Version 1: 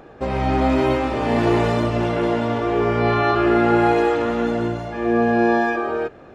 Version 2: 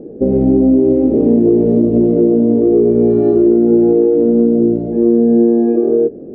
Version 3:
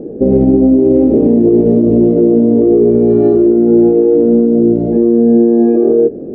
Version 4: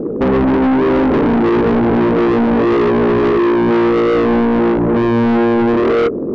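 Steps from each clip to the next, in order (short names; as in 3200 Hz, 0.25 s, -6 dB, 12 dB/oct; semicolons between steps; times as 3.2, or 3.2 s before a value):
EQ curve 110 Hz 0 dB, 220 Hz +15 dB, 460 Hz +12 dB, 1100 Hz -26 dB; compressor, threshold -10 dBFS, peak gain reduction 9 dB; gain +2.5 dB
maximiser +7 dB; gain -1 dB
soft clip -17 dBFS, distortion -7 dB; gain +6 dB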